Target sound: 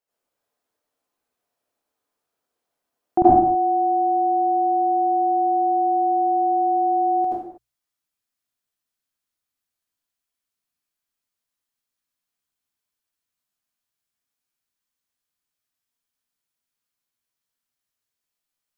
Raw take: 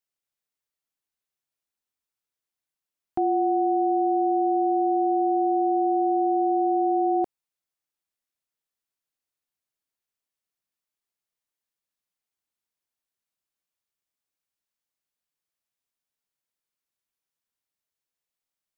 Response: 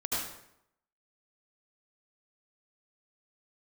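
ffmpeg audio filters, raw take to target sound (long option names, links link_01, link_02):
-filter_complex "[0:a]bandreject=frequency=60:width_type=h:width=6,bandreject=frequency=120:width_type=h:width=6,asetnsamples=nb_out_samples=441:pad=0,asendcmd='3.22 equalizer g -4.5',equalizer=frequency=540:width_type=o:width=2.4:gain=13[link_01];[1:a]atrim=start_sample=2205,afade=type=out:start_time=0.38:duration=0.01,atrim=end_sample=17199[link_02];[link_01][link_02]afir=irnorm=-1:irlink=0,volume=-1dB"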